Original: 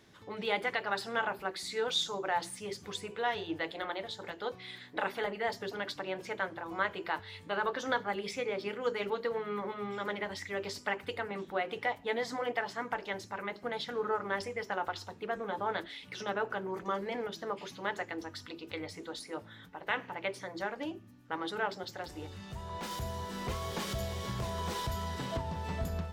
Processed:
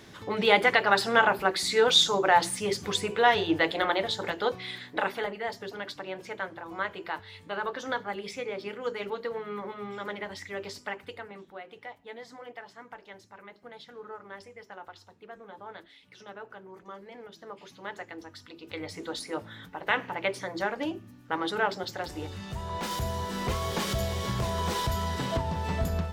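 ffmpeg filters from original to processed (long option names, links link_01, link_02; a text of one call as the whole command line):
ffmpeg -i in.wav -af "volume=27.5dB,afade=type=out:start_time=4.17:duration=1.23:silence=0.281838,afade=type=out:start_time=10.62:duration=0.96:silence=0.316228,afade=type=in:start_time=17.12:duration=0.91:silence=0.446684,afade=type=in:start_time=18.54:duration=0.56:silence=0.334965" out.wav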